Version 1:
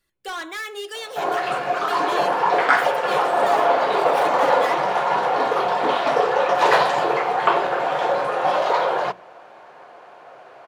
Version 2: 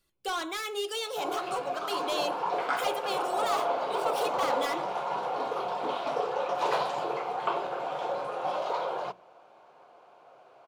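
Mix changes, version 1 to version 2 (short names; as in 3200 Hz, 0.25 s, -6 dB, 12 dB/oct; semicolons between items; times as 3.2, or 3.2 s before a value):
background -11.0 dB; master: add bell 1800 Hz -11 dB 0.37 oct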